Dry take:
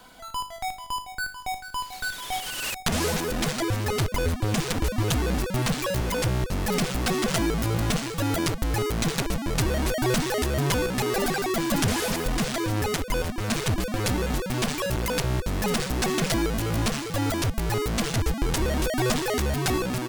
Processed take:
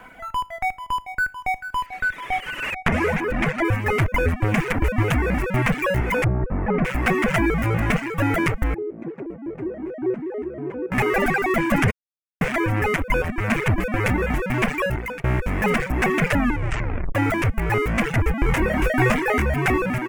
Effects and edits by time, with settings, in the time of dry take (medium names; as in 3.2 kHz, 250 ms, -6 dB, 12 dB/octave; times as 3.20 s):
1.86–3.65 s: treble shelf 7.1 kHz -10.5 dB
6.24–6.85 s: low-pass 1.1 kHz
8.74–10.92 s: band-pass filter 350 Hz, Q 3.6
11.91–12.41 s: mute
14.81–15.24 s: fade out, to -17.5 dB
16.22 s: tape stop 0.93 s
18.45–19.46 s: doubling 23 ms -7 dB
whole clip: reverb removal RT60 0.78 s; resonant high shelf 3 kHz -11 dB, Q 3; trim +5.5 dB